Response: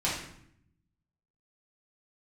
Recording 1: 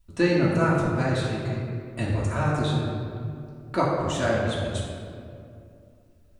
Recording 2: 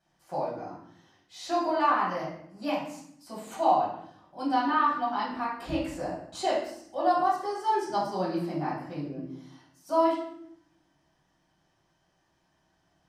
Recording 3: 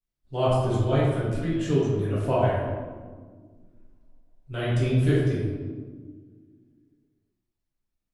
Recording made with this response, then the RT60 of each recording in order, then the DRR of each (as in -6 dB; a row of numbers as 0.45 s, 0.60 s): 2; 2.5 s, 0.70 s, 1.6 s; -7.0 dB, -8.5 dB, -9.5 dB